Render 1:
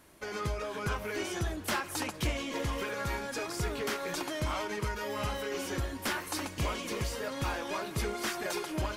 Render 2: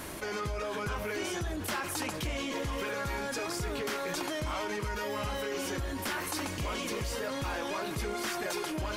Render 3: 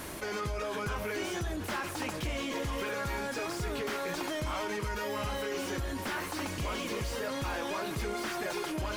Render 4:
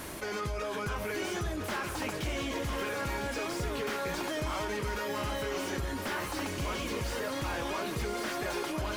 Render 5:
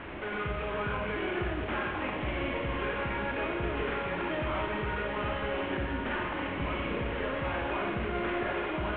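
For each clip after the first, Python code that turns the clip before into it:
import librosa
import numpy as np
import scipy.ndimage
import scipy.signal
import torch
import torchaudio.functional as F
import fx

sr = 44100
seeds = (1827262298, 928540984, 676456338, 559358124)

y1 = fx.env_flatten(x, sr, amount_pct=70)
y1 = y1 * 10.0 ** (-4.5 / 20.0)
y2 = fx.high_shelf(y1, sr, hz=9800.0, db=3.5)
y2 = fx.slew_limit(y2, sr, full_power_hz=52.0)
y3 = y2 + 10.0 ** (-8.0 / 20.0) * np.pad(y2, (int(1003 * sr / 1000.0), 0))[:len(y2)]
y4 = fx.cvsd(y3, sr, bps=16000)
y4 = fx.rev_schroeder(y4, sr, rt60_s=1.4, comb_ms=31, drr_db=1.0)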